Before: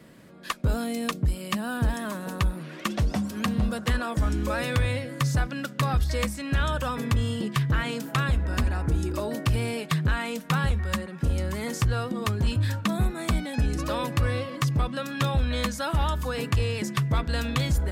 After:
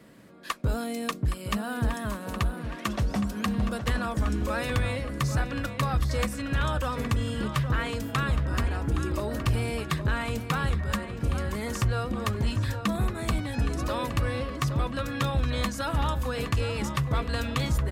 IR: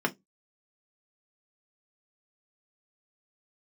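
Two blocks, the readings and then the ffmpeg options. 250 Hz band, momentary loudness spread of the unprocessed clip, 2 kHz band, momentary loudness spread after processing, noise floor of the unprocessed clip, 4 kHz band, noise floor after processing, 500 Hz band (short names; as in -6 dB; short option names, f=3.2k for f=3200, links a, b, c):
-1.5 dB, 4 LU, -1.5 dB, 3 LU, -41 dBFS, -2.0 dB, -39 dBFS, -1.0 dB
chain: -filter_complex "[0:a]asplit=2[a][b];[b]adelay=817,lowpass=f=3.4k:p=1,volume=-9dB,asplit=2[c][d];[d]adelay=817,lowpass=f=3.4k:p=1,volume=0.52,asplit=2[e][f];[f]adelay=817,lowpass=f=3.4k:p=1,volume=0.52,asplit=2[g][h];[h]adelay=817,lowpass=f=3.4k:p=1,volume=0.52,asplit=2[i][j];[j]adelay=817,lowpass=f=3.4k:p=1,volume=0.52,asplit=2[k][l];[l]adelay=817,lowpass=f=3.4k:p=1,volume=0.52[m];[a][c][e][g][i][k][m]amix=inputs=7:normalize=0,asplit=2[n][o];[1:a]atrim=start_sample=2205,asetrate=33957,aresample=44100[p];[o][p]afir=irnorm=-1:irlink=0,volume=-25.5dB[q];[n][q]amix=inputs=2:normalize=0,volume=-2.5dB"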